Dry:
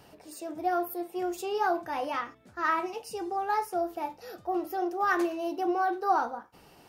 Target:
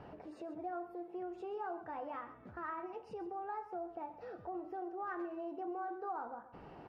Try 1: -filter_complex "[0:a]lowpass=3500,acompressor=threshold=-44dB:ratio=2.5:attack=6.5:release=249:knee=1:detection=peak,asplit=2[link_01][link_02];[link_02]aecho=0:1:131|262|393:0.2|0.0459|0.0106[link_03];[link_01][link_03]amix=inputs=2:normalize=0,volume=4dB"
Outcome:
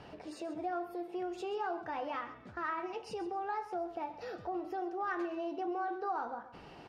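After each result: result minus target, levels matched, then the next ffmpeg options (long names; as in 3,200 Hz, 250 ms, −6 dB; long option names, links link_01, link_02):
4,000 Hz band +10.5 dB; downward compressor: peak gain reduction −4.5 dB
-filter_complex "[0:a]lowpass=1500,acompressor=threshold=-44dB:ratio=2.5:attack=6.5:release=249:knee=1:detection=peak,asplit=2[link_01][link_02];[link_02]aecho=0:1:131|262|393:0.2|0.0459|0.0106[link_03];[link_01][link_03]amix=inputs=2:normalize=0,volume=4dB"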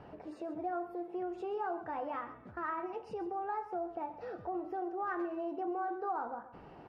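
downward compressor: peak gain reduction −5 dB
-filter_complex "[0:a]lowpass=1500,acompressor=threshold=-52dB:ratio=2.5:attack=6.5:release=249:knee=1:detection=peak,asplit=2[link_01][link_02];[link_02]aecho=0:1:131|262|393:0.2|0.0459|0.0106[link_03];[link_01][link_03]amix=inputs=2:normalize=0,volume=4dB"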